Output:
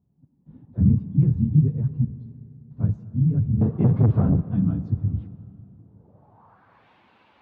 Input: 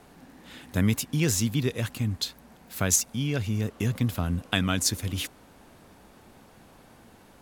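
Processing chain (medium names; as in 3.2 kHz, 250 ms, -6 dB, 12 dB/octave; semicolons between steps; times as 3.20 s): phase randomisation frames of 50 ms; 2.04–2.77 s: compression 3:1, threshold -43 dBFS, peak gain reduction 13.5 dB; ten-band graphic EQ 125 Hz -5 dB, 1 kHz +9 dB, 4 kHz +8 dB; gate -45 dBFS, range -17 dB; low-pass sweep 140 Hz -> 2.6 kHz, 5.48–6.88 s; 0.65–1.23 s: phase dispersion lows, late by 40 ms, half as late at 330 Hz; dynamic bell 1.5 kHz, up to +4 dB, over -57 dBFS, Q 1; 3.61–4.41 s: overdrive pedal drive 27 dB, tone 7.4 kHz, clips at -15 dBFS; high-pass 84 Hz; reverberation RT60 3.1 s, pre-delay 25 ms, DRR 14 dB; trim +7.5 dB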